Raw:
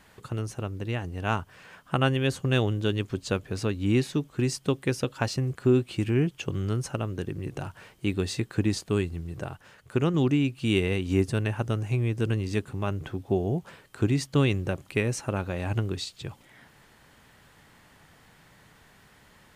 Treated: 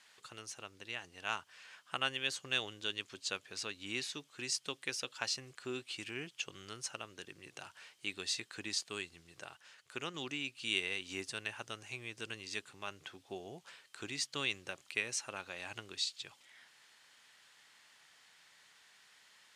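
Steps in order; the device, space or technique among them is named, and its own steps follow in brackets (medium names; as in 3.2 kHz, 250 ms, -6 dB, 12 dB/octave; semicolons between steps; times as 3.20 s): piezo pickup straight into a mixer (low-pass 5.2 kHz 12 dB/octave; differentiator); trim +6 dB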